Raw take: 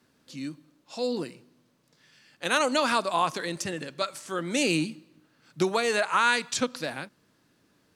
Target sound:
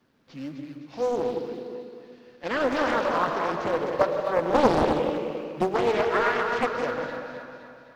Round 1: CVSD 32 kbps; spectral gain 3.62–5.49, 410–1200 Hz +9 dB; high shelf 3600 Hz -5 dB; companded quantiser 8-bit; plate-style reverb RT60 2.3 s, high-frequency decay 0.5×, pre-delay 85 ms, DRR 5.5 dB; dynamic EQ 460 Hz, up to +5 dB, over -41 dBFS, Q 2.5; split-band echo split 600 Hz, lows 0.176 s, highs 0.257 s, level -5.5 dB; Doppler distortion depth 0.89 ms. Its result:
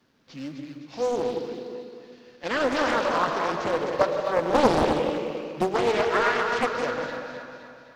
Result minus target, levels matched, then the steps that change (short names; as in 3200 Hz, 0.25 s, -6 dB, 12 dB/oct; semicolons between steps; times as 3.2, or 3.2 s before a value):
8000 Hz band +5.0 dB
change: high shelf 3600 Hz -14 dB